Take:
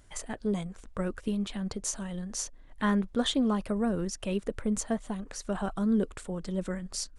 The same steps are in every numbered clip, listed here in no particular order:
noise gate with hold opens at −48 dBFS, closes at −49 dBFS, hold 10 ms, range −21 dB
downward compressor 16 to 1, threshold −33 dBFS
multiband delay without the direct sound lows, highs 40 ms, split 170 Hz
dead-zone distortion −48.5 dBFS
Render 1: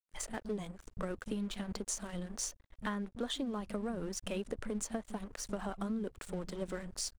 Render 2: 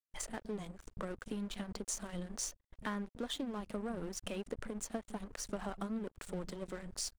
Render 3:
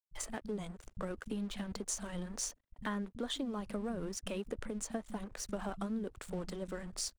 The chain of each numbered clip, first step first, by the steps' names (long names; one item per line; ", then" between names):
multiband delay without the direct sound, then noise gate with hold, then dead-zone distortion, then downward compressor
downward compressor, then multiband delay without the direct sound, then dead-zone distortion, then noise gate with hold
dead-zone distortion, then noise gate with hold, then downward compressor, then multiband delay without the direct sound